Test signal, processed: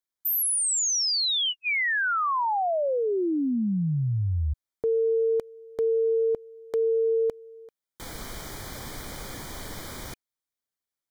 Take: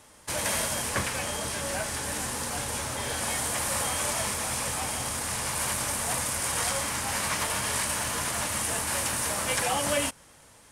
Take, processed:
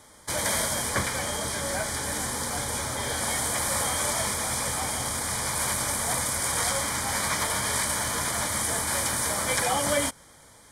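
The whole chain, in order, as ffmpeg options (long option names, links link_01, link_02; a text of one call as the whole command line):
ffmpeg -i in.wav -af "asuperstop=centerf=2700:order=12:qfactor=5.4,volume=2dB" out.wav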